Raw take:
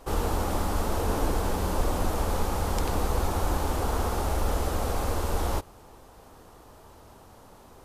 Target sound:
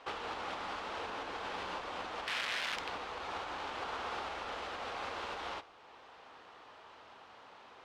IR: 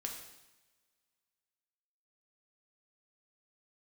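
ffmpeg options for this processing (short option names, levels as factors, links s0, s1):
-filter_complex "[0:a]alimiter=limit=0.0668:level=0:latency=1:release=465,asplit=3[s0][s1][s2];[s0]afade=t=out:st=2.26:d=0.02[s3];[s1]aeval=exprs='(mod(39.8*val(0)+1,2)-1)/39.8':c=same,afade=t=in:st=2.26:d=0.02,afade=t=out:st=2.75:d=0.02[s4];[s2]afade=t=in:st=2.75:d=0.02[s5];[s3][s4][s5]amix=inputs=3:normalize=0,bandpass=f=3000:t=q:w=1.1:csg=0,adynamicsmooth=sensitivity=5.5:basefreq=3100,asplit=2[s6][s7];[1:a]atrim=start_sample=2205[s8];[s7][s8]afir=irnorm=-1:irlink=0,volume=0.335[s9];[s6][s9]amix=inputs=2:normalize=0,volume=2.51"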